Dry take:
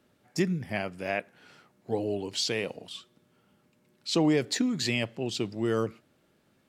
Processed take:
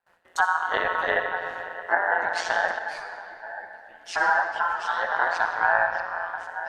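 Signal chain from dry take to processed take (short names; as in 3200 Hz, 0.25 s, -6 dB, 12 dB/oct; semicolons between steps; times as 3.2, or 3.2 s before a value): bell 520 Hz +7 dB 1.7 oct; treble ducked by the level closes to 550 Hz, closed at -18.5 dBFS; delay with a stepping band-pass 0.464 s, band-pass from 160 Hz, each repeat 1.4 oct, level -6.5 dB; gate with hold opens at -53 dBFS; digital reverb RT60 2.7 s, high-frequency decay 0.65×, pre-delay 20 ms, DRR 4.5 dB; ring modulator 86 Hz; bell 4400 Hz -4.5 dB 0.48 oct; ring modulator 1200 Hz; 2.79–5.12 ensemble effect; gain +7 dB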